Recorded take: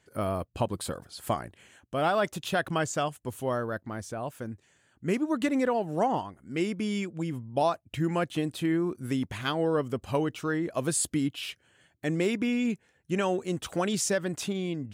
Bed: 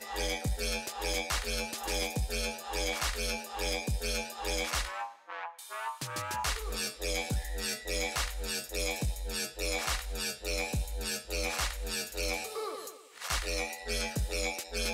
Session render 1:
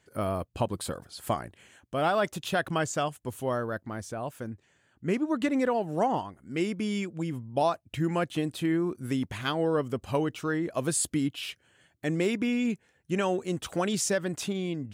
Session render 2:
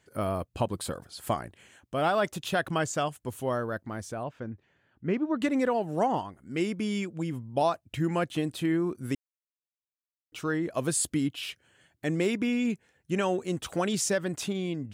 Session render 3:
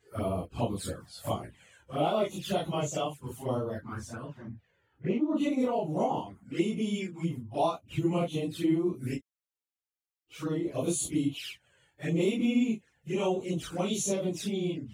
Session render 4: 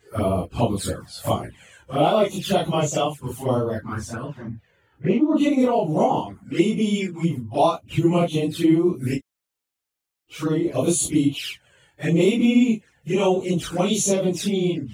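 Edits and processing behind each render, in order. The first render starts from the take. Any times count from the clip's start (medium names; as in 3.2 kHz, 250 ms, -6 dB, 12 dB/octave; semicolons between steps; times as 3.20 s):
4.49–5.60 s: low-pass 3.5 kHz -> 7.2 kHz 6 dB/octave
4.23–5.42 s: distance through air 210 m; 9.15–10.32 s: mute
phase randomisation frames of 100 ms; touch-sensitive flanger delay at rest 2.5 ms, full sweep at -27 dBFS
trim +9.5 dB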